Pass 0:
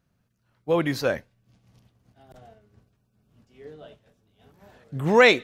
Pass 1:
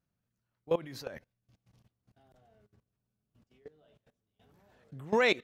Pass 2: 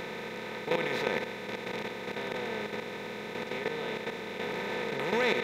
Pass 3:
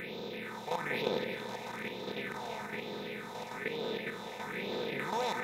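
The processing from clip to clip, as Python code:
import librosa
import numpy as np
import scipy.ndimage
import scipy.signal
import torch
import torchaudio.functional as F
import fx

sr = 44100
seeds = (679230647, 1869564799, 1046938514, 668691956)

y1 = fx.level_steps(x, sr, step_db=20)
y1 = y1 * 10.0 ** (-4.5 / 20.0)
y2 = fx.bin_compress(y1, sr, power=0.2)
y2 = y2 * 10.0 ** (-5.5 / 20.0)
y3 = fx.phaser_stages(y2, sr, stages=4, low_hz=320.0, high_hz=1900.0, hz=1.1, feedback_pct=35)
y3 = fx.low_shelf(y3, sr, hz=110.0, db=-9.0)
y3 = fx.echo_split(y3, sr, split_hz=950.0, low_ms=193, high_ms=330, feedback_pct=52, wet_db=-8.5)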